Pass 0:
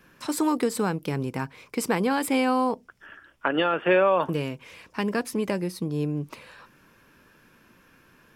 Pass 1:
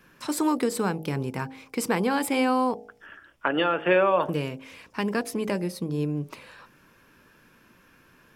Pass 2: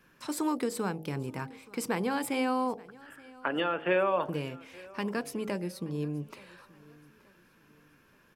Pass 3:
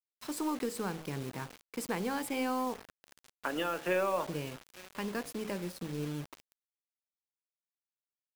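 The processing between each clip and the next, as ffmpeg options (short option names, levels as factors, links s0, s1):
-af "bandreject=f=53.04:t=h:w=4,bandreject=f=106.08:t=h:w=4,bandreject=f=159.12:t=h:w=4,bandreject=f=212.16:t=h:w=4,bandreject=f=265.2:t=h:w=4,bandreject=f=318.24:t=h:w=4,bandreject=f=371.28:t=h:w=4,bandreject=f=424.32:t=h:w=4,bandreject=f=477.36:t=h:w=4,bandreject=f=530.4:t=h:w=4,bandreject=f=583.44:t=h:w=4,bandreject=f=636.48:t=h:w=4,bandreject=f=689.52:t=h:w=4,bandreject=f=742.56:t=h:w=4,bandreject=f=795.6:t=h:w=4,bandreject=f=848.64:t=h:w=4"
-af "aecho=1:1:876|1752|2628:0.075|0.0277|0.0103,volume=0.501"
-af "acrusher=bits=6:mix=0:aa=0.000001,aeval=exprs='0.178*(cos(1*acos(clip(val(0)/0.178,-1,1)))-cos(1*PI/2))+0.00282*(cos(6*acos(clip(val(0)/0.178,-1,1)))-cos(6*PI/2))':c=same,volume=0.631"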